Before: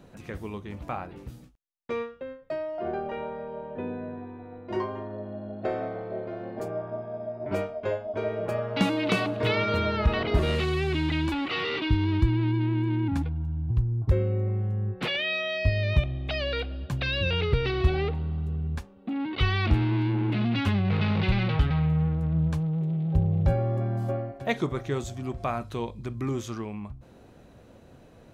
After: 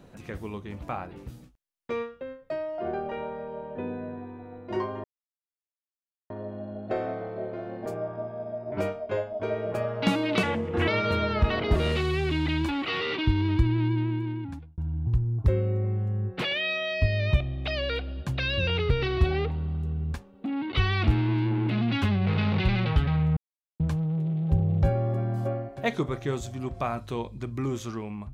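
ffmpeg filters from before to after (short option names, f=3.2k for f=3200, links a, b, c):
-filter_complex "[0:a]asplit=7[a][b][c][d][e][f][g];[a]atrim=end=5.04,asetpts=PTS-STARTPTS,afade=t=out:st=5.036:d=0.004:c=hsin,apad=pad_dur=1.26[h];[b]atrim=start=5.04:end=9.174,asetpts=PTS-STARTPTS,afade=t=in:d=0.004:c=hsin[i];[c]atrim=start=9.17:end=9.51,asetpts=PTS-STARTPTS,asetrate=33516,aresample=44100[j];[d]atrim=start=9.506:end=13.41,asetpts=PTS-STARTPTS,afade=t=out:st=3.054:d=0.85[k];[e]atrim=start=13.41:end=22,asetpts=PTS-STARTPTS,afade=t=in:d=0.004:c=hsin,afade=t=out:st=8.586:d=0.004:c=hsin[l];[f]atrim=start=22:end=22.43,asetpts=PTS-STARTPTS,volume=0[m];[g]atrim=start=22.43,asetpts=PTS-STARTPTS,afade=t=in:d=0.004:c=hsin[n];[h][i]concat=n=2:v=0:a=1[o];[o][j]acrossfade=d=0.004:c1=hsin:c2=hsin[p];[k][l][m][n]concat=n=4:v=0:a=1[q];[p][q]acrossfade=d=0.004:c1=hsin:c2=hsin"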